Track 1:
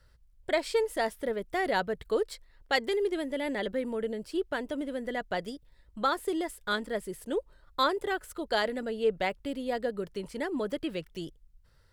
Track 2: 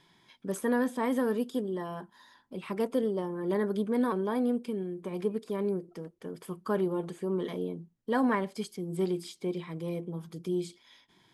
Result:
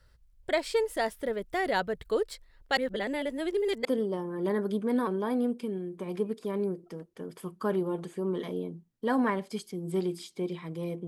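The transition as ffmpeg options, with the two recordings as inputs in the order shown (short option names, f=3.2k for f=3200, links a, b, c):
-filter_complex "[0:a]apad=whole_dur=11.07,atrim=end=11.07,asplit=2[a][b];[a]atrim=end=2.772[c];[b]atrim=start=2.768:end=3.852,asetpts=PTS-STARTPTS,areverse[d];[1:a]atrim=start=2.898:end=10.12[e];[c][d]acrossfade=d=0.004:c1=hsin:c2=hsin[f];[f][e]acrossfade=d=0.004:c1=hsin:c2=hsin"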